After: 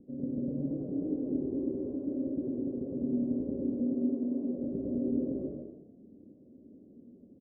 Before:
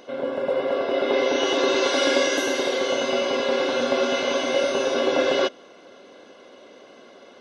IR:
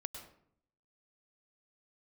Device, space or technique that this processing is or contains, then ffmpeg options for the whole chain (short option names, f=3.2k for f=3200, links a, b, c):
club heard from the street: -filter_complex "[0:a]asettb=1/sr,asplit=3[a][b][c];[a]atrim=end=0.504[d];[b]atrim=start=0.5:end=1.35,asetpts=PTS-STARTPTS,afade=t=in:d=0.004:c=qsin,afade=t=out:st=0.846:d=0.004:c=qsin,aecho=1:1:6.5:0.83,atrim=end_sample=37485[e];[c]atrim=start=1.346[f];[d][e]acrossfade=d=0.004:c1=hsin:c2=qsin[g];[g][f]acrossfade=d=0.004:c1=qsin:c2=hsin,asettb=1/sr,asplit=3[h][i][j];[h]atrim=end=3.744[k];[i]atrim=start=3.74:end=4.58,asetpts=PTS-STARTPTS,afade=t=in:d=0.004:c=qsin,afade=t=out:st=0.836:d=0.004:c=qsin,highpass=f=180:w=0.5412,highpass=f=180:w=1.3066[l];[j]atrim=start=4.576[m];[k][l]acrossfade=d=0.004:c1=hsin:c2=qsin[n];[n][m]acrossfade=d=0.004:c1=qsin:c2=hsin,asplit=6[o][p][q][r][s][t];[p]adelay=95,afreqshift=38,volume=-8dB[u];[q]adelay=190,afreqshift=76,volume=-15.5dB[v];[r]adelay=285,afreqshift=114,volume=-23.1dB[w];[s]adelay=380,afreqshift=152,volume=-30.6dB[x];[t]adelay=475,afreqshift=190,volume=-38.1dB[y];[o][u][v][w][x][y]amix=inputs=6:normalize=0,alimiter=limit=-14.5dB:level=0:latency=1:release=18,lowpass=f=240:w=0.5412,lowpass=f=240:w=1.3066[z];[1:a]atrim=start_sample=2205[aa];[z][aa]afir=irnorm=-1:irlink=0,volume=8dB"